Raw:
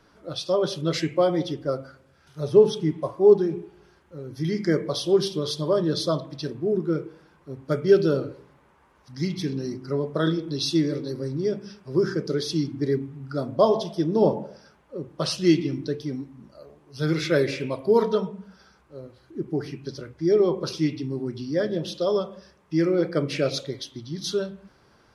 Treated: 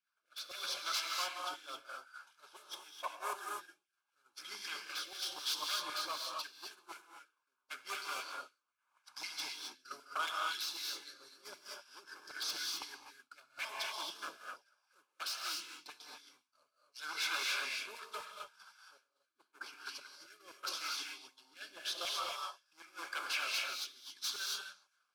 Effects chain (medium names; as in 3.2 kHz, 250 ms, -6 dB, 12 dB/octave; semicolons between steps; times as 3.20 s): CVSD coder 64 kbps; peaking EQ 480 Hz -9.5 dB 0.52 oct; harmonic-percussive split harmonic -10 dB; dynamic bell 150 Hz, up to -4 dB, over -45 dBFS, Q 1.5; compression 2:1, threshold -53 dBFS, peak gain reduction 18 dB; wavefolder -40 dBFS; LFO high-pass saw down 3.9 Hz 900–2100 Hz; rotary cabinet horn 0.85 Hz; repeats whose band climbs or falls 137 ms, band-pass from 3.2 kHz, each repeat 0.7 oct, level -12 dB; gated-style reverb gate 290 ms rising, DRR -1 dB; expander -49 dBFS; Butterworth band-stop 1.9 kHz, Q 4.7; trim +9 dB